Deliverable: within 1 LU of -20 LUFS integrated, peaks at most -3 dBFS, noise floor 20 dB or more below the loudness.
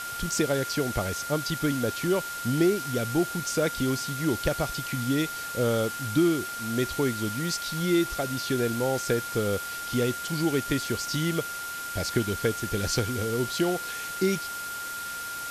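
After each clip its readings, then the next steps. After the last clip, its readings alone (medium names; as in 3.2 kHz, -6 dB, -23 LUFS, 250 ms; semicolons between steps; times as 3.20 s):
steady tone 1.4 kHz; tone level -34 dBFS; noise floor -35 dBFS; noise floor target -48 dBFS; loudness -27.5 LUFS; peak level -12.0 dBFS; loudness target -20.0 LUFS
-> band-stop 1.4 kHz, Q 30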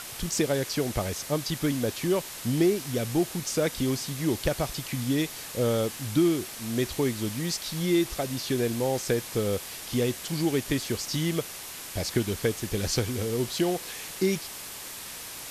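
steady tone not found; noise floor -40 dBFS; noise floor target -49 dBFS
-> noise print and reduce 9 dB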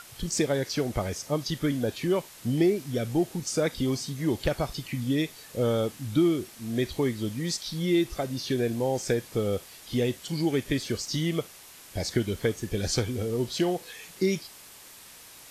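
noise floor -49 dBFS; loudness -28.5 LUFS; peak level -12.5 dBFS; loudness target -20.0 LUFS
-> trim +8.5 dB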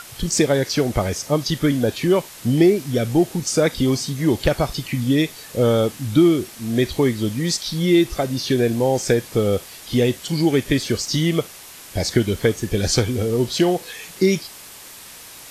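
loudness -20.0 LUFS; peak level -4.0 dBFS; noise floor -41 dBFS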